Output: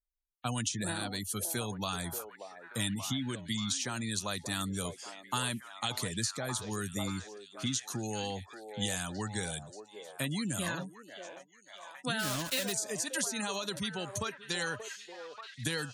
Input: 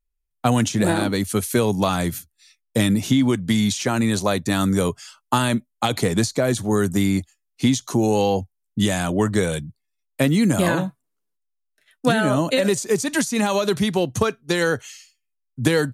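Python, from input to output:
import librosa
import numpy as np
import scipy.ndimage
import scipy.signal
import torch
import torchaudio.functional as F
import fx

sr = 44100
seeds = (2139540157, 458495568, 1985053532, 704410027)

y = fx.block_float(x, sr, bits=3, at=(12.19, 12.73))
y = fx.tone_stack(y, sr, knobs='5-5-5')
y = fx.spec_gate(y, sr, threshold_db=-25, keep='strong')
y = fx.echo_stepped(y, sr, ms=582, hz=550.0, octaves=0.7, feedback_pct=70, wet_db=-4)
y = fx.dynamic_eq(y, sr, hz=2200.0, q=6.7, threshold_db=-58.0, ratio=4.0, max_db=-6)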